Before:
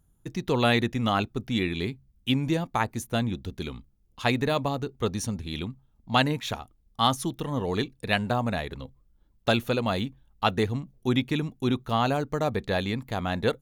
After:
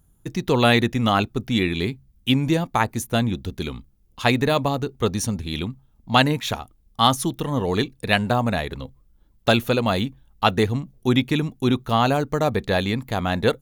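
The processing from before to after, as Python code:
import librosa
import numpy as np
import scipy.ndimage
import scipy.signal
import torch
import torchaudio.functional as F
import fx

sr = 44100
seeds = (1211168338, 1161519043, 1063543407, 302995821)

y = fx.high_shelf(x, sr, hz=11000.0, db=5.0)
y = y * 10.0 ** (5.5 / 20.0)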